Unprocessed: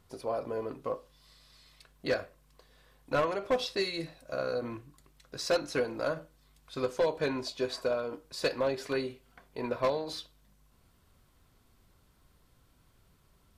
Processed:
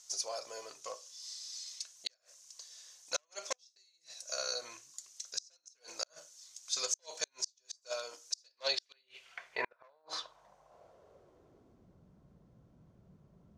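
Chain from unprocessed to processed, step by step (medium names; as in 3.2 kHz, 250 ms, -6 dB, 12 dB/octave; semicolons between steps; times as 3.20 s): fifteen-band graphic EQ 250 Hz -9 dB, 630 Hz +6 dB, 6.3 kHz +12 dB; band-pass sweep 6.2 kHz -> 210 Hz, 8.30–11.99 s; inverted gate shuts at -35 dBFS, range -42 dB; trim +15.5 dB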